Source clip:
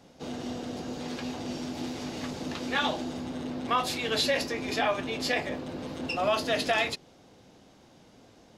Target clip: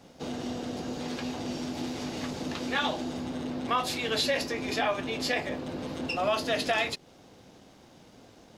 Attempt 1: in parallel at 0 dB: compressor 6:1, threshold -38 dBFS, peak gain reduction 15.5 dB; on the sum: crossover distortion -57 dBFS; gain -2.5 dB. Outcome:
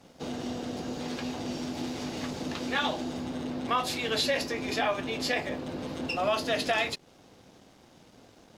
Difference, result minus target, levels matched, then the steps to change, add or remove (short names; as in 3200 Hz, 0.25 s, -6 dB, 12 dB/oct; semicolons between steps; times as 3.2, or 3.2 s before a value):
crossover distortion: distortion +6 dB
change: crossover distortion -63.5 dBFS